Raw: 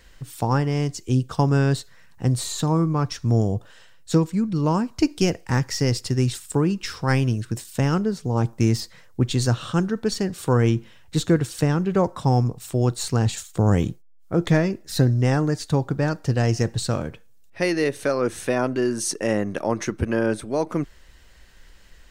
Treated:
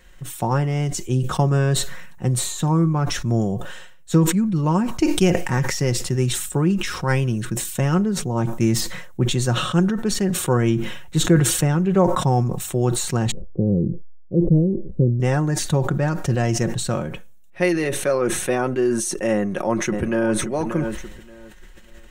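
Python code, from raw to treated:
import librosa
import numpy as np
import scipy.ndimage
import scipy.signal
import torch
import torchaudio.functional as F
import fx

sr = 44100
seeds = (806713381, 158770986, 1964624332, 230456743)

y = fx.cheby1_lowpass(x, sr, hz=500.0, order=4, at=(13.31, 15.2))
y = fx.echo_throw(y, sr, start_s=19.34, length_s=1.02, ms=580, feedback_pct=25, wet_db=-12.0)
y = fx.peak_eq(y, sr, hz=4800.0, db=-10.0, octaves=0.38)
y = y + 0.5 * np.pad(y, (int(5.5 * sr / 1000.0), 0))[:len(y)]
y = fx.sustainer(y, sr, db_per_s=50.0)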